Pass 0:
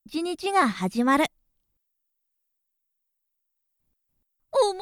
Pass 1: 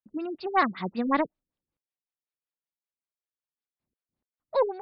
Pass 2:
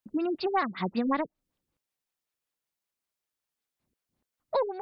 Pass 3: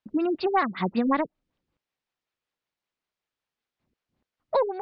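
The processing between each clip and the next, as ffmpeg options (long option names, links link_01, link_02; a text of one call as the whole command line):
ffmpeg -i in.wav -af "highpass=frequency=230:poles=1,aeval=exprs='0.355*(cos(1*acos(clip(val(0)/0.355,-1,1)))-cos(1*PI/2))+0.0316*(cos(3*acos(clip(val(0)/0.355,-1,1)))-cos(3*PI/2))':channel_layout=same,afftfilt=real='re*lt(b*sr/1024,420*pow(5500/420,0.5+0.5*sin(2*PI*5.3*pts/sr)))':imag='im*lt(b*sr/1024,420*pow(5500/420,0.5+0.5*sin(2*PI*5.3*pts/sr)))':win_size=1024:overlap=0.75" out.wav
ffmpeg -i in.wav -af "acompressor=threshold=-33dB:ratio=4,volume=7dB" out.wav
ffmpeg -i in.wav -af "lowpass=4000,volume=4dB" out.wav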